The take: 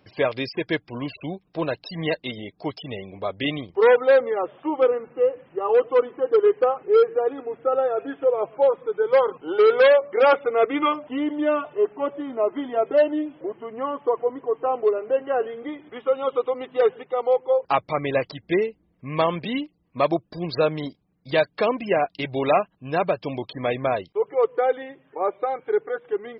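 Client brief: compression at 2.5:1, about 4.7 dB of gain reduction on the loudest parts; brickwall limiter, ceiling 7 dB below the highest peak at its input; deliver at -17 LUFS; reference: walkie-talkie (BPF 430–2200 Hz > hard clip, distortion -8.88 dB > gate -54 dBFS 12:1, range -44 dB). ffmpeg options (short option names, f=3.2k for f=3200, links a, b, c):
-af "acompressor=threshold=-19dB:ratio=2.5,alimiter=limit=-16dB:level=0:latency=1,highpass=430,lowpass=2.2k,asoftclip=type=hard:threshold=-27dB,agate=range=-44dB:threshold=-54dB:ratio=12,volume=16dB"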